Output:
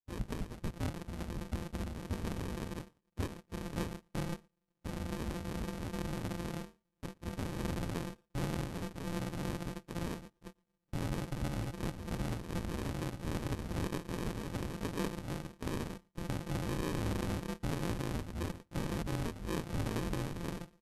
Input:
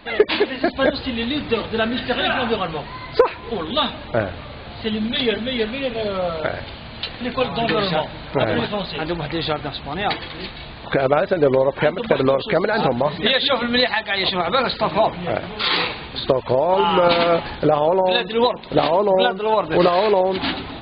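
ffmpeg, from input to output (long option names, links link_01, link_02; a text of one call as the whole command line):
ffmpeg -i in.wav -filter_complex "[0:a]agate=range=-43dB:threshold=-27dB:ratio=16:detection=peak,asubboost=boost=11:cutoff=79,afreqshift=-350,acrusher=samples=39:mix=1:aa=0.000001,aeval=exprs='0.473*(cos(1*acos(clip(val(0)/0.473,-1,1)))-cos(1*PI/2))+0.0473*(cos(3*acos(clip(val(0)/0.473,-1,1)))-cos(3*PI/2))+0.00668*(cos(6*acos(clip(val(0)/0.473,-1,1)))-cos(6*PI/2))+0.00422*(cos(8*acos(clip(val(0)/0.473,-1,1)))-cos(8*PI/2))':channel_layout=same,asoftclip=type=tanh:threshold=-16.5dB,tremolo=f=270:d=0.974,asetrate=26990,aresample=44100,atempo=1.63392,asplit=2[link_01][link_02];[link_02]adelay=116.6,volume=-29dB,highshelf=frequency=4000:gain=-2.62[link_03];[link_01][link_03]amix=inputs=2:normalize=0,volume=-8.5dB" out.wav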